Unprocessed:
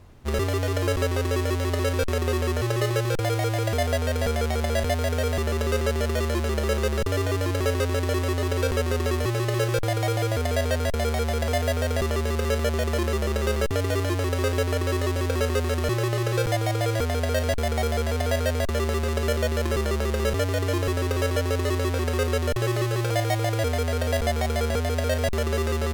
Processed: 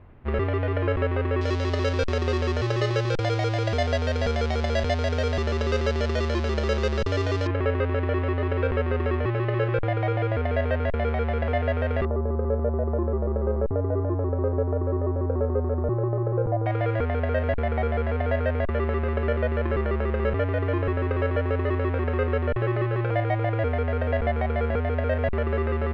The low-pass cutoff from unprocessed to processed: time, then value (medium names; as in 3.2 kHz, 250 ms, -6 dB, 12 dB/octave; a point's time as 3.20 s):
low-pass 24 dB/octave
2.5 kHz
from 1.41 s 5.4 kHz
from 7.47 s 2.5 kHz
from 12.05 s 1 kHz
from 16.66 s 2.3 kHz